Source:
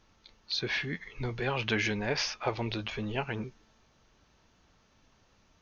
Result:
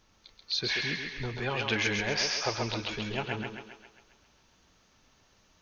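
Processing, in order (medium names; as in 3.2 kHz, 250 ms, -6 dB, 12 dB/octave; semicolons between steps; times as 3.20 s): treble shelf 4.4 kHz +7 dB; on a send: thinning echo 134 ms, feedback 56%, high-pass 290 Hz, level -3 dB; on the sum: trim -1.5 dB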